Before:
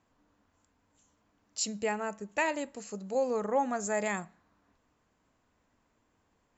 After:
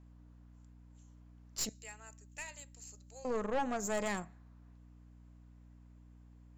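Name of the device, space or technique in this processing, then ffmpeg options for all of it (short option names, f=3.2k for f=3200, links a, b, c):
valve amplifier with mains hum: -filter_complex "[0:a]asettb=1/sr,asplit=3[a][b][c];[a]atrim=end=1.694[d];[b]atrim=start=1.69:end=3.25,asetpts=PTS-STARTPTS,afade=t=in:d=0.004:c=qsin,afade=t=out:st=1.556:d=0.004:c=qsin,aderivative[e];[c]atrim=start=3.246[f];[d][e]acrossfade=d=0.004:c1=hsin:c2=qsin[g];[g][f]acrossfade=d=0.004:c1=qsin:c2=hsin,aeval=exprs='(tanh(28.2*val(0)+0.6)-tanh(0.6))/28.2':c=same,aeval=exprs='val(0)+0.00158*(sin(2*PI*60*n/s)+sin(2*PI*2*60*n/s)/2+sin(2*PI*3*60*n/s)/3+sin(2*PI*4*60*n/s)/4+sin(2*PI*5*60*n/s)/5)':c=same"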